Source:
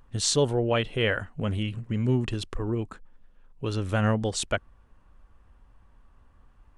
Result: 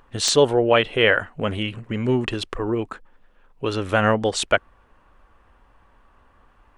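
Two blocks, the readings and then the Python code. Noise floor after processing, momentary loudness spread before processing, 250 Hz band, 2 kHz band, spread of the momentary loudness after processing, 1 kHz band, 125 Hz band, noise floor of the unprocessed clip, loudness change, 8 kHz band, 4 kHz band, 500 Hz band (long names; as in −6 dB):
−57 dBFS, 8 LU, +4.0 dB, +10.0 dB, 11 LU, +9.5 dB, −1.0 dB, −58 dBFS, +6.0 dB, +3.0 dB, +7.0 dB, +8.5 dB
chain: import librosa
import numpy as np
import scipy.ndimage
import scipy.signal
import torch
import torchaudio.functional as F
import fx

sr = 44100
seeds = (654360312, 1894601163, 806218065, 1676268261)

p1 = fx.high_shelf(x, sr, hz=4100.0, db=8.5)
p2 = (np.mod(10.0 ** (6.5 / 20.0) * p1 + 1.0, 2.0) - 1.0) / 10.0 ** (6.5 / 20.0)
p3 = p1 + (p2 * librosa.db_to_amplitude(-4.0))
p4 = fx.bass_treble(p3, sr, bass_db=-11, treble_db=-14)
y = p4 * librosa.db_to_amplitude(5.0)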